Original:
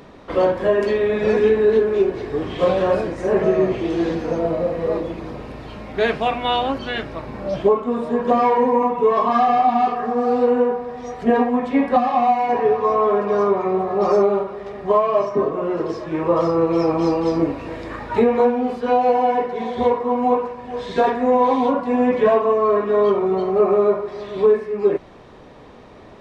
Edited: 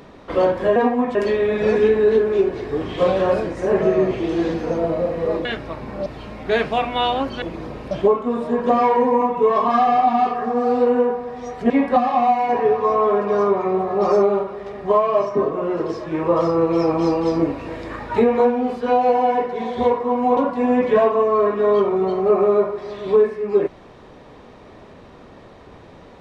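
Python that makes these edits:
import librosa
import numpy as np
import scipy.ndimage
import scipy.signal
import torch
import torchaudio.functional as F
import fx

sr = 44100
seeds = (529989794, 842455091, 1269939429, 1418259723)

y = fx.edit(x, sr, fx.swap(start_s=5.06, length_s=0.49, other_s=6.91, other_length_s=0.61),
    fx.move(start_s=11.31, length_s=0.39, to_s=0.76),
    fx.cut(start_s=20.37, length_s=1.3), tone=tone)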